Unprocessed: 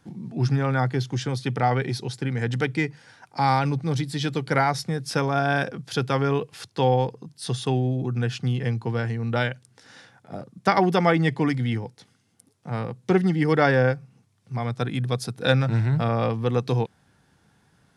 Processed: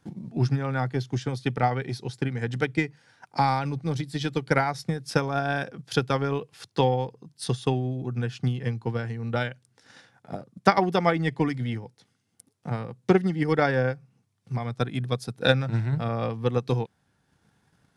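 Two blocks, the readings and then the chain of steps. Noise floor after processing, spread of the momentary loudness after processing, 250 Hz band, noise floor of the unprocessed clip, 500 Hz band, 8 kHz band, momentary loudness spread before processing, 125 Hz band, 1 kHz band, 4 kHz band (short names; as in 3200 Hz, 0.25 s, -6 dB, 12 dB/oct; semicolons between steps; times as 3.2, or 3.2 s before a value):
-71 dBFS, 10 LU, -2.5 dB, -64 dBFS, -2.0 dB, -4.0 dB, 11 LU, -3.5 dB, -2.5 dB, -2.0 dB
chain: transient shaper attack +8 dB, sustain -3 dB; gain -5 dB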